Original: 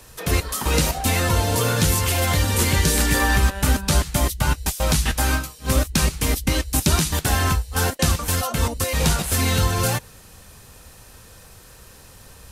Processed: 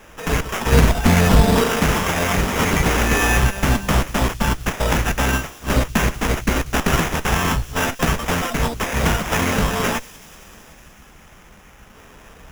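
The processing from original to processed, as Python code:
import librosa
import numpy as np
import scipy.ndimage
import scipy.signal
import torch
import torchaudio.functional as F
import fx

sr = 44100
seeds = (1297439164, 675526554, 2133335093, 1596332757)

y = fx.lower_of_two(x, sr, delay_ms=4.5)
y = fx.low_shelf(y, sr, hz=370.0, db=10.0, at=(0.72, 1.64))
y = fx.spec_erase(y, sr, start_s=10.75, length_s=1.19, low_hz=250.0, high_hz=5100.0)
y = fx.sample_hold(y, sr, seeds[0], rate_hz=4300.0, jitter_pct=0)
y = fx.echo_wet_highpass(y, sr, ms=188, feedback_pct=74, hz=3800.0, wet_db=-16)
y = y * librosa.db_to_amplitude(3.0)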